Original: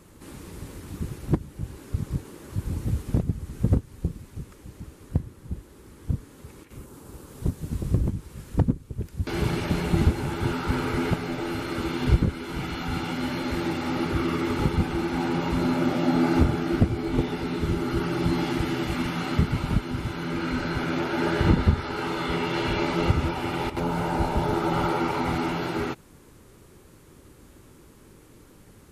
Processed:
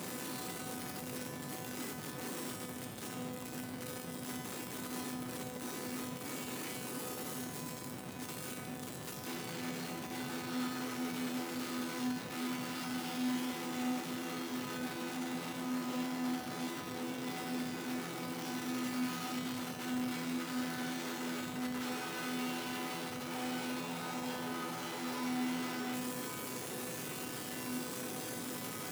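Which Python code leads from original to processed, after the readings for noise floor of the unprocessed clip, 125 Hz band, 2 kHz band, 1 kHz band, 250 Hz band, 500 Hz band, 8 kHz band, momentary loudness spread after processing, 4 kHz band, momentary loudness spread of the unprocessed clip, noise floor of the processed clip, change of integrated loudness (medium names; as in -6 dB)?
-52 dBFS, -22.5 dB, -9.0 dB, -11.5 dB, -11.0 dB, -13.5 dB, +3.0 dB, 5 LU, -6.0 dB, 16 LU, -45 dBFS, -12.5 dB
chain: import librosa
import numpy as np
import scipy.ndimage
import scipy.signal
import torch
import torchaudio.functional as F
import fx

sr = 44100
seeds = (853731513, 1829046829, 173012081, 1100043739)

y = np.sign(x) * np.sqrt(np.mean(np.square(x)))
y = scipy.signal.sosfilt(scipy.signal.butter(4, 130.0, 'highpass', fs=sr, output='sos'), y)
y = fx.comb_fb(y, sr, f0_hz=250.0, decay_s=1.2, harmonics='all', damping=0.0, mix_pct=90)
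y = y * librosa.db_to_amplitude(3.0)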